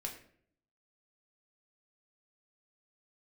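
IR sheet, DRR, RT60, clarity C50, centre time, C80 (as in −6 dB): 0.5 dB, 0.60 s, 9.0 dB, 19 ms, 12.0 dB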